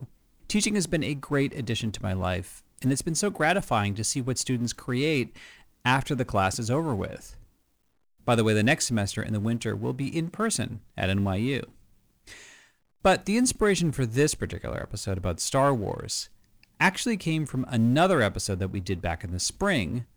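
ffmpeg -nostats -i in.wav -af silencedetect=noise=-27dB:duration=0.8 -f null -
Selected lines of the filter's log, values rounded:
silence_start: 7.15
silence_end: 8.28 | silence_duration: 1.13
silence_start: 11.63
silence_end: 13.05 | silence_duration: 1.42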